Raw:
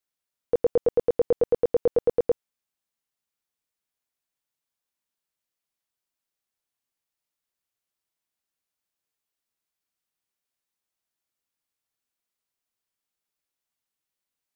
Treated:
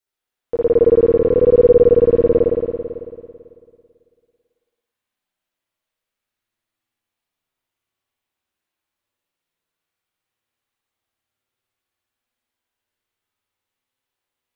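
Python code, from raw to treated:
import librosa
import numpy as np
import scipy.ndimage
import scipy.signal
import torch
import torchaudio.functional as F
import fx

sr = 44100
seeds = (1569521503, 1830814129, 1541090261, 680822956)

y = fx.chorus_voices(x, sr, voices=4, hz=0.16, base_ms=10, depth_ms=2.1, mix_pct=40)
y = fx.rev_spring(y, sr, rt60_s=2.2, pass_ms=(55,), chirp_ms=30, drr_db=-7.0)
y = F.gain(torch.from_numpy(y), 3.0).numpy()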